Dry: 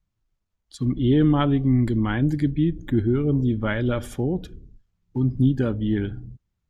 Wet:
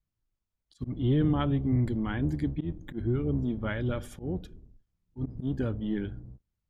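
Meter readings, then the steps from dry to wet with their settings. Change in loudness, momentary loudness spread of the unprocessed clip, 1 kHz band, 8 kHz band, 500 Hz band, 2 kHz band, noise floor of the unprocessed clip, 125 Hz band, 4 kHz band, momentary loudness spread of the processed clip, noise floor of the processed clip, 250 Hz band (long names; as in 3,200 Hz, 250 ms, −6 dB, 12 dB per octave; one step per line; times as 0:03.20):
−8.0 dB, 8 LU, −8.0 dB, can't be measured, −8.0 dB, −8.0 dB, −77 dBFS, −7.0 dB, −8.5 dB, 12 LU, −85 dBFS, −8.5 dB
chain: sub-octave generator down 1 octave, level −5 dB
volume swells 107 ms
level −8 dB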